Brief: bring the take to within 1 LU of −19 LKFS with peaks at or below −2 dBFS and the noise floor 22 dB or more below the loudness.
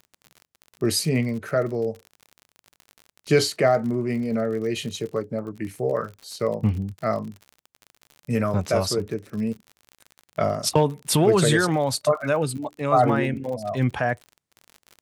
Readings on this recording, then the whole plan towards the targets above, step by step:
crackle rate 46 per second; integrated loudness −24.0 LKFS; sample peak −5.5 dBFS; target loudness −19.0 LKFS
→ click removal
level +5 dB
brickwall limiter −2 dBFS

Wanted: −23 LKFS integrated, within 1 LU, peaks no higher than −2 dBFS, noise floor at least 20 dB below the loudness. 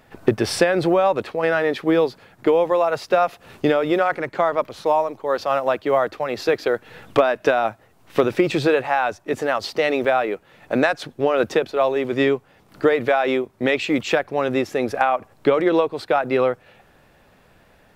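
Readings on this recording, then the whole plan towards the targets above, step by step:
number of dropouts 1; longest dropout 5.7 ms; integrated loudness −21.0 LKFS; sample peak −4.5 dBFS; target loudness −23.0 LKFS
→ repair the gap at 0:10.04, 5.7 ms
level −2 dB

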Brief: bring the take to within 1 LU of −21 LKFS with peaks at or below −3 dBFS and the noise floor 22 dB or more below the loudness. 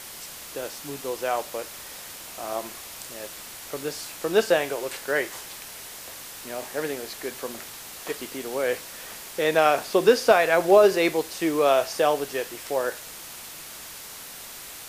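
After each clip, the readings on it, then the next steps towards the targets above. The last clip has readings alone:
background noise floor −41 dBFS; target noise floor −47 dBFS; integrated loudness −24.5 LKFS; sample peak −3.5 dBFS; target loudness −21.0 LKFS
→ broadband denoise 6 dB, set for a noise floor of −41 dBFS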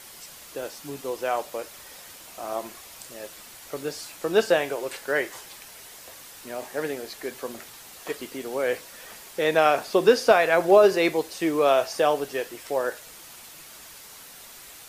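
background noise floor −46 dBFS; target noise floor −47 dBFS
→ broadband denoise 6 dB, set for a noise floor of −46 dBFS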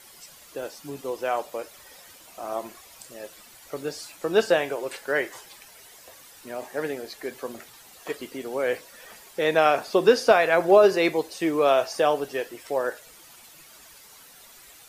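background noise floor −50 dBFS; integrated loudness −24.0 LKFS; sample peak −3.5 dBFS; target loudness −21.0 LKFS
→ level +3 dB
brickwall limiter −3 dBFS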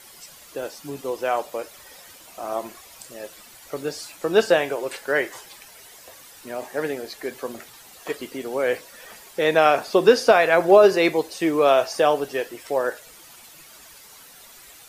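integrated loudness −21.0 LKFS; sample peak −3.0 dBFS; background noise floor −47 dBFS

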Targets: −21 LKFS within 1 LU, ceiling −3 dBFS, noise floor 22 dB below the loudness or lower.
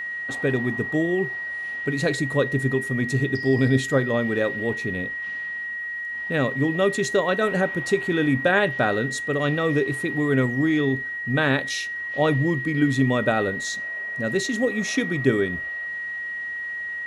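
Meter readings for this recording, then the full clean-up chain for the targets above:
interfering tone 1,900 Hz; level of the tone −28 dBFS; integrated loudness −23.5 LKFS; sample peak −7.0 dBFS; target loudness −21.0 LKFS
→ notch filter 1,900 Hz, Q 30
level +2.5 dB

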